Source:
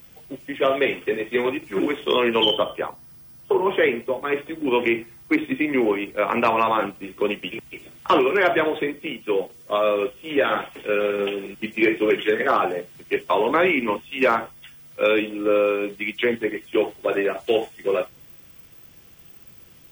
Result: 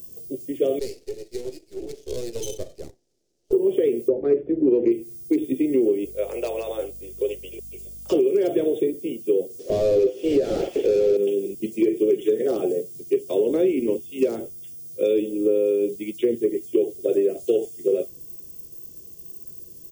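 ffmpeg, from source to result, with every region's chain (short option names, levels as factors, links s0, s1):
-filter_complex "[0:a]asettb=1/sr,asplit=3[s0][s1][s2];[s0]atrim=end=0.794[s3];[s1]atrim=start=0.79:end=3.53,asetpts=PTS-STARTPTS,afade=t=in:d=0.004:c=qsin,afade=t=out:st=2.736:d=0.004:c=qsin,highpass=680,lowpass=2100,aeval=exprs='max(val(0),0)':c=same[s4];[s2]atrim=start=3.526[s5];[s3][s4]acrossfade=d=0.004:c1=hsin:c2=qsin[s6];[s6][s5]acrossfade=d=0.004:c1=qsin:c2=hsin,asettb=1/sr,asplit=3[s7][s8][s9];[s7]atrim=end=4.084[s10];[s8]atrim=start=4.08:end=4.92,asetpts=PTS-STARTPTS,afade=t=in:d=0.004:c=qsin,afade=t=out:st=0.836:d=0.004:c=qsin,lowpass=f=1900:w=0.5412,lowpass=f=1900:w=1.3066,acontrast=70[s11];[s9]atrim=start=4.916[s12];[s10][s11]acrossfade=d=0.004:c1=hsin:c2=qsin[s13];[s13][s12]acrossfade=d=0.004:c1=qsin:c2=hsin,asettb=1/sr,asplit=3[s14][s15][s16];[s14]atrim=end=6.054[s17];[s15]atrim=start=6.05:end=8.12,asetpts=PTS-STARTPTS,afade=t=in:d=0.004:c=qsin,afade=t=out:st=2.066:d=0.004:c=qsin,highpass=f=490:w=0.5412,highpass=f=490:w=1.3066,aeval=exprs='val(0)+0.00447*(sin(2*PI*50*n/s)+sin(2*PI*2*50*n/s)/2+sin(2*PI*3*50*n/s)/3+sin(2*PI*4*50*n/s)/4+sin(2*PI*5*50*n/s)/5)':c=same[s18];[s16]atrim=start=8.116[s19];[s17][s18]acrossfade=d=0.004:c1=hsin:c2=qsin[s20];[s20][s19]acrossfade=d=0.004:c1=qsin:c2=hsin,asettb=1/sr,asplit=3[s21][s22][s23];[s21]atrim=end=9.594[s24];[s22]atrim=start=9.59:end=11.17,asetpts=PTS-STARTPTS,afade=t=in:d=0.004:c=qsin,afade=t=out:st=1.576:d=0.004:c=qsin,highpass=320,asplit=2[s25][s26];[s26]highpass=f=720:p=1,volume=44.7,asoftclip=type=tanh:threshold=0.376[s27];[s25][s27]amix=inputs=2:normalize=0,lowpass=f=1300:p=1,volume=0.501,acrossover=split=4000[s28][s29];[s29]acompressor=threshold=0.00282:ratio=4:attack=1:release=60[s30];[s28][s30]amix=inputs=2:normalize=0[s31];[s23]atrim=start=11.166[s32];[s24][s31]acrossfade=d=0.004:c1=hsin:c2=qsin[s33];[s33][s32]acrossfade=d=0.004:c1=qsin:c2=hsin,firequalizer=gain_entry='entry(240,0);entry(390,8);entry(1000,-28);entry(4700,1);entry(6800,8)':delay=0.05:min_phase=1,acompressor=threshold=0.158:ratio=5"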